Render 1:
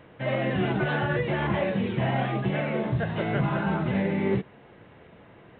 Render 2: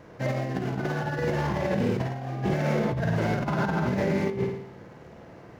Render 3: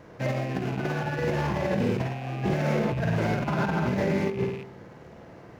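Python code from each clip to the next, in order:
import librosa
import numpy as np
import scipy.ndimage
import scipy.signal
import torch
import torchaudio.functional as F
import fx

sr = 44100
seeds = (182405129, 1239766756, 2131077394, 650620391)

y1 = scipy.signal.medfilt(x, 15)
y1 = fx.room_flutter(y1, sr, wall_m=9.2, rt60_s=0.74)
y1 = fx.over_compress(y1, sr, threshold_db=-26.0, ratio=-0.5)
y2 = fx.rattle_buzz(y1, sr, strikes_db=-39.0, level_db=-34.0)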